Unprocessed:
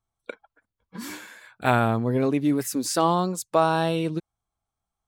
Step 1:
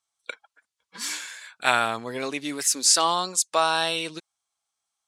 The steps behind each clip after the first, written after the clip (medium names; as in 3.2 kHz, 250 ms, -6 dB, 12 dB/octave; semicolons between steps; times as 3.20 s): frequency weighting ITU-R 468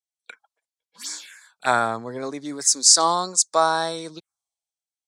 touch-sensitive phaser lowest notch 190 Hz, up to 2.8 kHz, full sweep at -27.5 dBFS; three bands expanded up and down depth 40%; trim +2.5 dB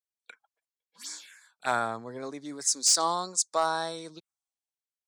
hard clipper -8 dBFS, distortion -19 dB; trim -7.5 dB